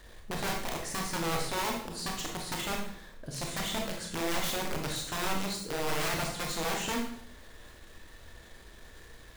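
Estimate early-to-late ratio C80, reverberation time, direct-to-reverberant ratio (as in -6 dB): 8.0 dB, 0.70 s, 0.0 dB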